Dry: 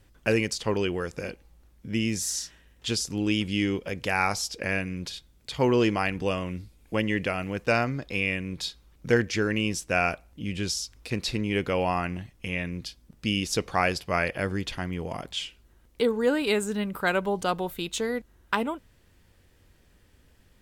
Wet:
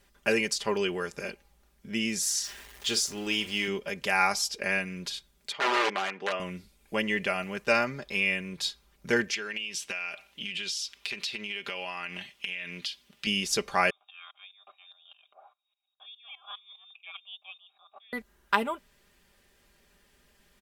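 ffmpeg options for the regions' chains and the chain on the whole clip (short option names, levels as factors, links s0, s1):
-filter_complex "[0:a]asettb=1/sr,asplit=3[s0][s1][s2];[s0]atrim=end=2.444[s3];[s1]atrim=start=2.44:end=3.68,asetpts=PTS-STARTPTS,afade=t=in:d=0.004:c=qsin,afade=t=out:st=1.236:d=0.004:c=qsin,aeval=exprs='val(0)+0.5*0.00841*sgn(val(0))':c=same,equalizer=f=180:t=o:w=0.36:g=-13.5,asplit=2[s4][s5];[s5]adelay=44,volume=0.251[s6];[s4][s6]amix=inputs=2:normalize=0,atrim=end_sample=54684[s7];[s2]atrim=start=3.676[s8];[s3][s7]acrossfade=d=0.004:c1=hsin:c2=qsin[s9];[s9][s8]acrossfade=d=0.004:c1=qsin:c2=hsin,asettb=1/sr,asplit=3[s10][s11][s12];[s10]atrim=end=5.524[s13];[s11]atrim=start=5.52:end=6.4,asetpts=PTS-STARTPTS,afade=t=in:d=0.004:c=qsin,afade=t=out:st=0.876:d=0.004:c=qsin,aeval=exprs='(mod(7.94*val(0)+1,2)-1)/7.94':c=same,highpass=360,lowpass=2900[s14];[s12]atrim=start=6.396[s15];[s13][s14]acrossfade=d=0.004:c1=hsin:c2=qsin[s16];[s16][s15]acrossfade=d=0.004:c1=qsin:c2=hsin,asettb=1/sr,asplit=3[s17][s18][s19];[s17]atrim=end=9.344[s20];[s18]atrim=start=9.34:end=13.27,asetpts=PTS-STARTPTS,afade=t=in:d=0.004:c=qsin,afade=t=out:st=3.926:d=0.004:c=qsin,highpass=f=230:p=1,equalizer=f=3000:t=o:w=1.4:g=14.5,acompressor=threshold=0.0316:ratio=16:attack=3.2:release=140:knee=1:detection=peak[s21];[s19]atrim=start=13.266[s22];[s20][s21]acrossfade=d=0.004:c1=hsin:c2=qsin[s23];[s23][s22]acrossfade=d=0.004:c1=qsin:c2=hsin,asettb=1/sr,asplit=3[s24][s25][s26];[s24]atrim=end=13.904[s27];[s25]atrim=start=13.9:end=18.13,asetpts=PTS-STARTPTS,afade=t=in:d=0.004:c=qsin,afade=t=out:st=4.226:d=0.004:c=qsin,lowpass=f=3200:t=q:w=0.5098,lowpass=f=3200:t=q:w=0.6013,lowpass=f=3200:t=q:w=0.9,lowpass=f=3200:t=q:w=2.563,afreqshift=-3800,asplit=3[s28][s29][s30];[s28]bandpass=f=730:t=q:w=8,volume=1[s31];[s29]bandpass=f=1090:t=q:w=8,volume=0.501[s32];[s30]bandpass=f=2440:t=q:w=8,volume=0.355[s33];[s31][s32][s33]amix=inputs=3:normalize=0,aeval=exprs='val(0)*pow(10,-18*if(lt(mod(-4.9*n/s,1),2*abs(-4.9)/1000),1-mod(-4.9*n/s,1)/(2*abs(-4.9)/1000),(mod(-4.9*n/s,1)-2*abs(-4.9)/1000)/(1-2*abs(-4.9)/1000))/20)':c=same[s34];[s26]atrim=start=18.126[s35];[s27][s34]acrossfade=d=0.004:c1=hsin:c2=qsin[s36];[s36][s35]acrossfade=d=0.004:c1=qsin:c2=hsin,lowshelf=f=330:g=-10.5,aecho=1:1:5:0.64"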